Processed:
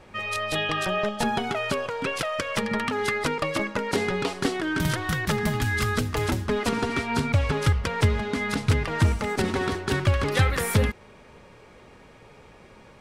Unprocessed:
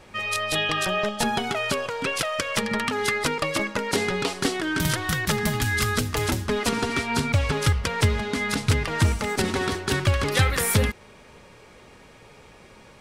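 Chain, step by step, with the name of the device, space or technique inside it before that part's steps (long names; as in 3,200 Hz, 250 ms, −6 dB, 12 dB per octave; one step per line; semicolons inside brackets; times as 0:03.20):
behind a face mask (high-shelf EQ 3,100 Hz −7.5 dB)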